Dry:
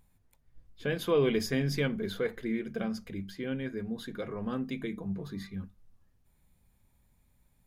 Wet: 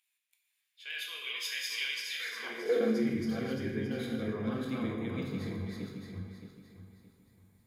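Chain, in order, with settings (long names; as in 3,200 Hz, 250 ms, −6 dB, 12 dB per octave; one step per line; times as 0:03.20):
feedback delay that plays each chunk backwards 310 ms, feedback 54%, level 0 dB
high-pass filter sweep 2,600 Hz → 100 Hz, 0:02.15–0:03.19
reverb whose tail is shaped and stops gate 310 ms falling, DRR 1 dB
level −5.5 dB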